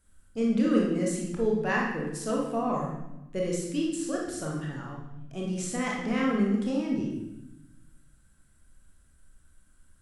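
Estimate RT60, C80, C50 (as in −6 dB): 0.90 s, 5.0 dB, 1.0 dB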